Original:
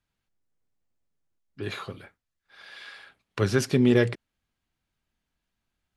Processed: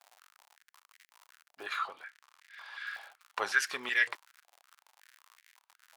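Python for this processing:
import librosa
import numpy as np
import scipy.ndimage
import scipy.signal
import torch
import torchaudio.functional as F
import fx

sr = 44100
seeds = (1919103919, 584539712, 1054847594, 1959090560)

y = fx.dmg_crackle(x, sr, seeds[0], per_s=100.0, level_db=-39.0)
y = fx.high_shelf(y, sr, hz=9700.0, db=-10.5, at=(1.77, 2.87))
y = fx.filter_held_highpass(y, sr, hz=5.4, low_hz=740.0, high_hz=1900.0)
y = y * librosa.db_to_amplitude(-4.0)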